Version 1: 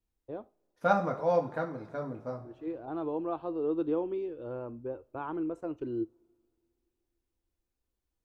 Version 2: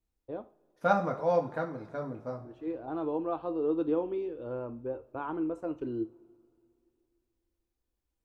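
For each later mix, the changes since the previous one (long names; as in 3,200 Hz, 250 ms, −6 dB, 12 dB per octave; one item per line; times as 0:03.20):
first voice: send +10.0 dB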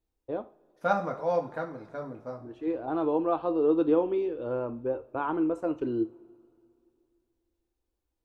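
first voice +6.5 dB
master: add low-shelf EQ 180 Hz −5.5 dB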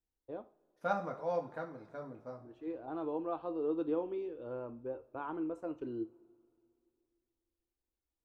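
first voice −10.5 dB
second voice −7.5 dB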